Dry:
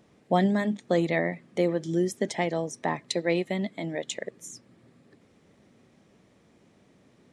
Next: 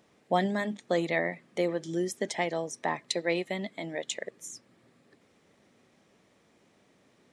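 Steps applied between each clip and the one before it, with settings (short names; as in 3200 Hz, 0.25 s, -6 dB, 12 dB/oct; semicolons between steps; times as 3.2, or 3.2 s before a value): low shelf 330 Hz -9.5 dB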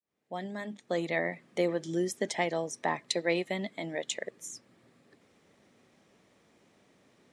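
opening faded in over 1.48 s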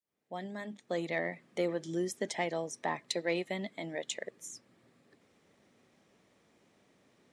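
soft clip -14.5 dBFS, distortion -27 dB; gain -3 dB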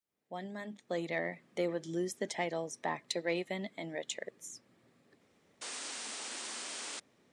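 painted sound noise, 5.61–7, 210–9500 Hz -41 dBFS; gain -1.5 dB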